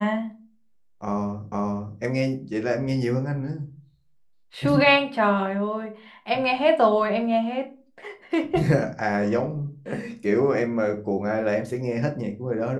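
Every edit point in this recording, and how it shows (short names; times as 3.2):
1.52 repeat of the last 0.47 s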